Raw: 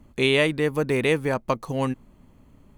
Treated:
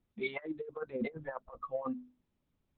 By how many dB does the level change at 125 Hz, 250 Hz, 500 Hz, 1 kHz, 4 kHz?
-24.5 dB, -14.0 dB, -16.0 dB, -13.5 dB, under -20 dB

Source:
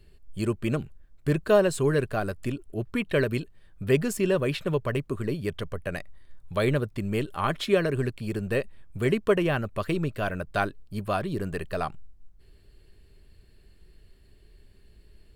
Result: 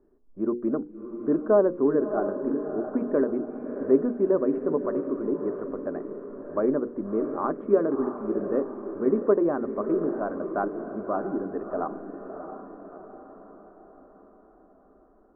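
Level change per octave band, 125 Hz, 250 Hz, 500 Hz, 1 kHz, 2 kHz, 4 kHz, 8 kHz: -14.0 dB, +3.5 dB, +2.0 dB, -0.5 dB, -12.0 dB, under -40 dB, under -35 dB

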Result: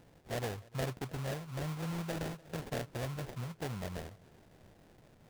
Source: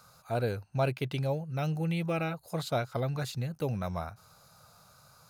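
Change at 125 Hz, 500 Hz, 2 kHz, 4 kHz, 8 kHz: -7.0, -8.0, -5.0, -4.5, 0.0 dB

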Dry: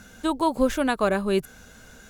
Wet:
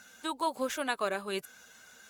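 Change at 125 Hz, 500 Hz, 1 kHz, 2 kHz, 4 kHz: under -15 dB, -10.5 dB, -7.0 dB, -5.5 dB, -3.5 dB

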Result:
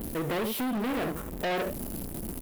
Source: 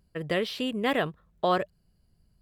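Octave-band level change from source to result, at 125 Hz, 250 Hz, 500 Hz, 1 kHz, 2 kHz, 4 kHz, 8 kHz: +1.0 dB, +1.5 dB, -3.0 dB, -4.5 dB, -3.0 dB, -4.5 dB, n/a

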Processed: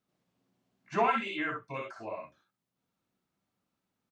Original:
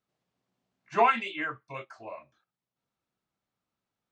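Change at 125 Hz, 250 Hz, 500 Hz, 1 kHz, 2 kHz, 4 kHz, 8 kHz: +2.5 dB, +2.0 dB, -2.5 dB, -4.0 dB, -3.0 dB, -2.5 dB, n/a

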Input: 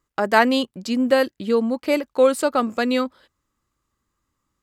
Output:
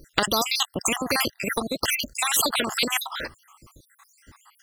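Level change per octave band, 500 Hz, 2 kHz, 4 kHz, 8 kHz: -12.0, -1.5, +6.0, +12.0 dB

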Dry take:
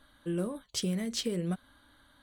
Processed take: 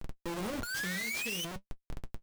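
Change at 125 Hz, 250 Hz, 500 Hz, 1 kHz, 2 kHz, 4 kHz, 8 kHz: -8.0, -7.5, -6.0, +5.5, +14.0, -1.0, -0.5 dB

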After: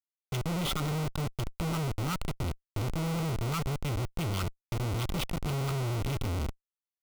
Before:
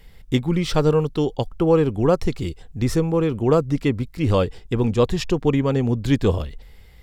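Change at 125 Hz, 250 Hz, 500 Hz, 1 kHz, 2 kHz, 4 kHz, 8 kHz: -8.5, -14.5, -19.0, -8.5, -6.5, -5.0, -2.5 dB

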